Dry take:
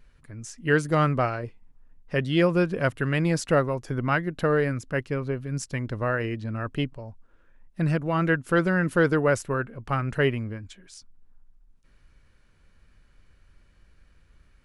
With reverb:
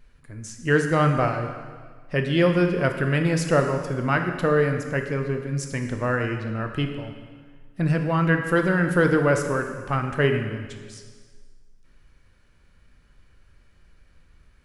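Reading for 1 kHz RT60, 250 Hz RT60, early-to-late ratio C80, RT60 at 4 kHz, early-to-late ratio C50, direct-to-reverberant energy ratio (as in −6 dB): 1.6 s, 1.6 s, 8.0 dB, 1.5 s, 6.5 dB, 4.5 dB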